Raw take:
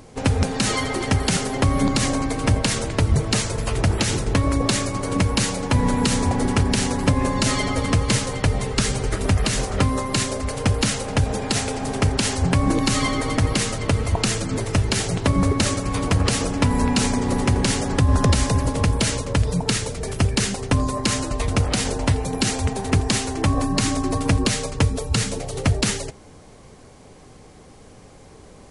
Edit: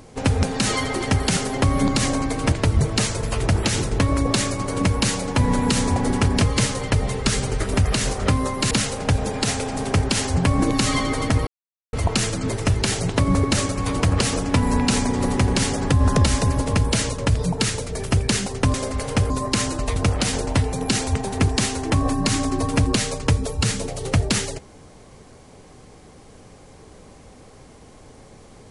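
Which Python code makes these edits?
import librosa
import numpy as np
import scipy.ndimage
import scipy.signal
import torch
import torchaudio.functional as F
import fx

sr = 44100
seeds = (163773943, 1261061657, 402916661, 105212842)

y = fx.edit(x, sr, fx.cut(start_s=2.52, length_s=0.35),
    fx.cut(start_s=6.76, length_s=1.17),
    fx.move(start_s=10.23, length_s=0.56, to_s=20.82),
    fx.silence(start_s=13.55, length_s=0.46), tone=tone)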